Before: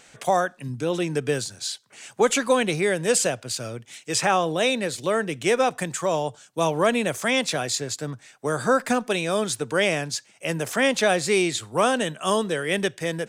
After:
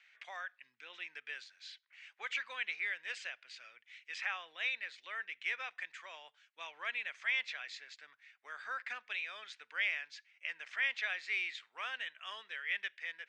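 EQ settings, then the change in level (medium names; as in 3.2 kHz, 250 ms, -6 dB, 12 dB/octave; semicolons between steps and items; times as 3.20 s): ladder band-pass 2.4 kHz, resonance 50%; distance through air 130 m; 0.0 dB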